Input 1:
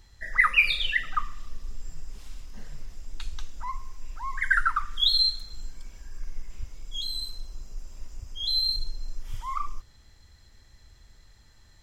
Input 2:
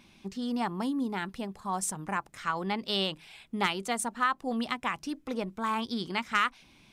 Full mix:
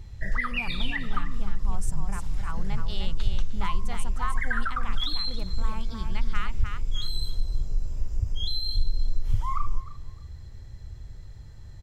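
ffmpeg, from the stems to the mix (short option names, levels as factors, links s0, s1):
-filter_complex "[0:a]acompressor=threshold=0.0398:ratio=4,equalizer=f=370:w=0.6:g=13.5,volume=0.794,asplit=2[s0][s1];[s1]volume=0.141[s2];[1:a]volume=0.355,asplit=2[s3][s4];[s4]volume=0.531[s5];[s2][s5]amix=inputs=2:normalize=0,aecho=0:1:306|612|918:1|0.18|0.0324[s6];[s0][s3][s6]amix=inputs=3:normalize=0,lowshelf=f=180:t=q:w=1.5:g=13.5"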